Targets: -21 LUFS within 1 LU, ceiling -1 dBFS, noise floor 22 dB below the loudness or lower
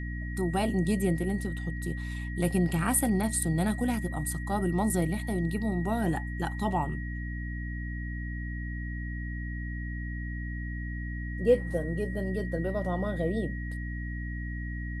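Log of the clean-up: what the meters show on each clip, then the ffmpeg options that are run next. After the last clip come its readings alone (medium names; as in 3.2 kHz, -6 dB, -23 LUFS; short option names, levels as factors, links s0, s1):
hum 60 Hz; highest harmonic 300 Hz; hum level -33 dBFS; steady tone 1.9 kHz; tone level -42 dBFS; loudness -31.0 LUFS; peak level -11.0 dBFS; loudness target -21.0 LUFS
-> -af "bandreject=f=60:t=h:w=6,bandreject=f=120:t=h:w=6,bandreject=f=180:t=h:w=6,bandreject=f=240:t=h:w=6,bandreject=f=300:t=h:w=6"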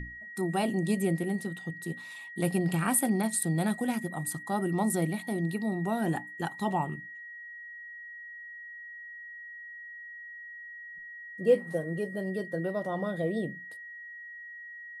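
hum not found; steady tone 1.9 kHz; tone level -42 dBFS
-> -af "bandreject=f=1900:w=30"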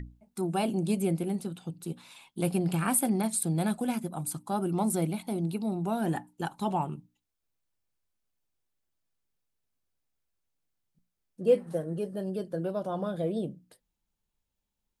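steady tone not found; loudness -31.0 LUFS; peak level -12.0 dBFS; loudness target -21.0 LUFS
-> -af "volume=3.16"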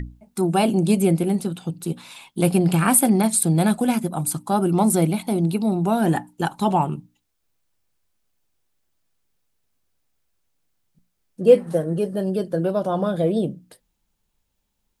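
loudness -21.0 LUFS; peak level -2.0 dBFS; noise floor -74 dBFS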